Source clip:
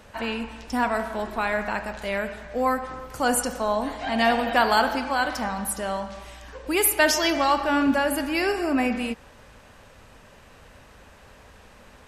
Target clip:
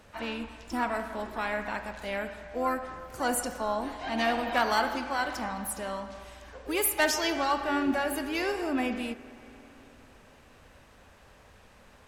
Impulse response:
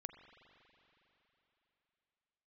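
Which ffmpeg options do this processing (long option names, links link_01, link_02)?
-filter_complex "[0:a]aeval=exprs='0.501*(cos(1*acos(clip(val(0)/0.501,-1,1)))-cos(1*PI/2))+0.0794*(cos(3*acos(clip(val(0)/0.501,-1,1)))-cos(3*PI/2))+0.0251*(cos(5*acos(clip(val(0)/0.501,-1,1)))-cos(5*PI/2))':channel_layout=same,asplit=2[link_01][link_02];[link_02]asetrate=58866,aresample=44100,atempo=0.749154,volume=-11dB[link_03];[link_01][link_03]amix=inputs=2:normalize=0,asplit=2[link_04][link_05];[1:a]atrim=start_sample=2205,asetrate=37926,aresample=44100[link_06];[link_05][link_06]afir=irnorm=-1:irlink=0,volume=-1.5dB[link_07];[link_04][link_07]amix=inputs=2:normalize=0,volume=-7.5dB"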